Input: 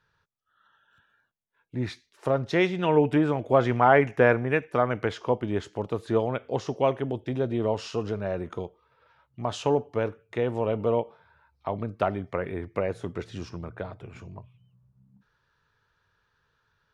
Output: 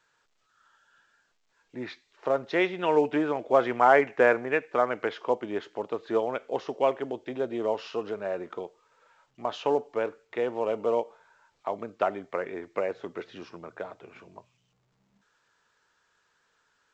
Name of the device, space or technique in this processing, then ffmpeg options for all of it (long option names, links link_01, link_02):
telephone: -af "highpass=340,lowpass=3600" -ar 16000 -c:a pcm_alaw